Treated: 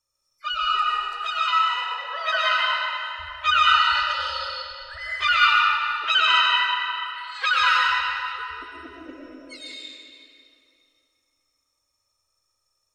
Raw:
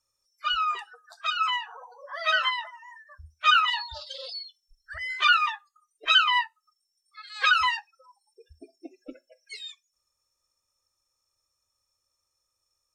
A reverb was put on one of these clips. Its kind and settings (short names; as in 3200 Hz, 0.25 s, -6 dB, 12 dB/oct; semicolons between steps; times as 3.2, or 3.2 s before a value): digital reverb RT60 2.7 s, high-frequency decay 0.8×, pre-delay 70 ms, DRR -5.5 dB; gain -1.5 dB